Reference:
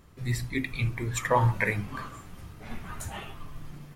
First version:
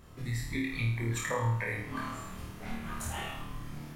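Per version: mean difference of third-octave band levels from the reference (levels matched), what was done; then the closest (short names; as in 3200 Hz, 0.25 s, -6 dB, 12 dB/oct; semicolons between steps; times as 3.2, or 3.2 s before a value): 5.5 dB: compressor 4:1, threshold -35 dBFS, peak gain reduction 14.5 dB; flutter echo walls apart 4.5 m, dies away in 0.66 s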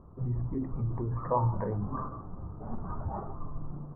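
12.0 dB: steep low-pass 1200 Hz 48 dB/oct; in parallel at 0 dB: negative-ratio compressor -34 dBFS, ratio -0.5; on the sum: gain -4.5 dB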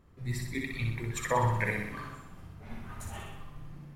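3.5 dB: on a send: flutter echo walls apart 10.7 m, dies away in 0.89 s; on the sum: mismatched tape noise reduction decoder only; gain -5.5 dB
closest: third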